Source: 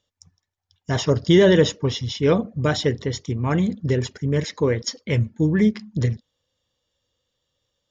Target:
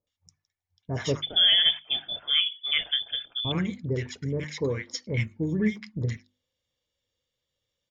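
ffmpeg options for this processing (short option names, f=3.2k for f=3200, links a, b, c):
-filter_complex "[0:a]asettb=1/sr,asplit=3[a][b][c];[a]atrim=end=1.154[d];[b]atrim=start=1.15:end=3.45,asetpts=PTS-STARTPTS,afade=t=in:d=0.004:c=qsin,afade=t=out:st=2.296:d=0.004:c=qsin,lowpass=f=3.1k:t=q:w=0.5098,lowpass=f=3.1k:t=q:w=0.6013,lowpass=f=3.1k:t=q:w=0.9,lowpass=f=3.1k:t=q:w=2.563,afreqshift=-3600[e];[c]atrim=start=3.446[f];[d][e]acrossfade=d=0.004:c1=hsin:c2=qsin[g];[g][f]acrossfade=d=0.004:c1=qsin:c2=hsin,equalizer=f=2.2k:t=o:w=0.25:g=8,bandreject=f=50:t=h:w=6,bandreject=f=100:t=h:w=6,bandreject=f=150:t=h:w=6,bandreject=f=200:t=h:w=6,bandreject=f=250:t=h:w=6,bandreject=f=300:t=h:w=6,bandreject=f=350:t=h:w=6,acrossover=split=1000[h][i];[i]adelay=70[j];[h][j]amix=inputs=2:normalize=0,volume=-7dB"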